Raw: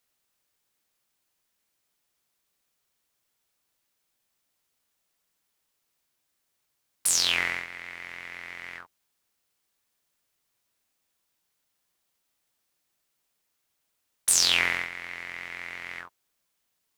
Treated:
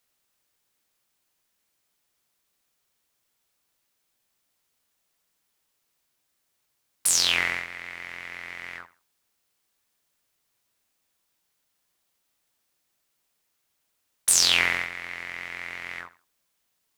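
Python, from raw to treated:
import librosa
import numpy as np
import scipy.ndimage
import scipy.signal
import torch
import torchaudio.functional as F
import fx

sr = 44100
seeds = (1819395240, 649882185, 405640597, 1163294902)

y = fx.echo_feedback(x, sr, ms=81, feedback_pct=26, wet_db=-18)
y = y * 10.0 ** (2.0 / 20.0)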